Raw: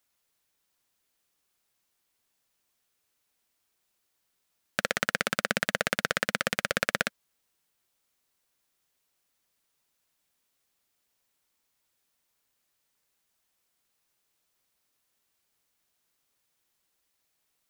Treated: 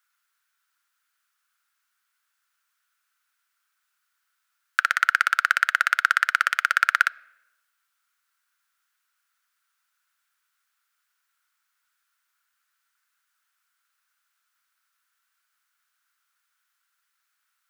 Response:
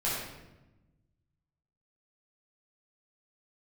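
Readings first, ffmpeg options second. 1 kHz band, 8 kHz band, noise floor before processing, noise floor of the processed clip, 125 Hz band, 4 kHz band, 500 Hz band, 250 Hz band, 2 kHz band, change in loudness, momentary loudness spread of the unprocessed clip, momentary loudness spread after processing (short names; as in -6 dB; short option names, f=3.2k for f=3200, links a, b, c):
+11.0 dB, -0.5 dB, -78 dBFS, -77 dBFS, under -35 dB, +0.5 dB, -15.0 dB, under -30 dB, +9.5 dB, +8.0 dB, 4 LU, 4 LU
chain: -filter_complex "[0:a]highpass=f=1.4k:t=q:w=5.7,asplit=2[a][b];[1:a]atrim=start_sample=2205,lowpass=4.6k[c];[b][c]afir=irnorm=-1:irlink=0,volume=-31dB[d];[a][d]amix=inputs=2:normalize=0,volume=-1dB"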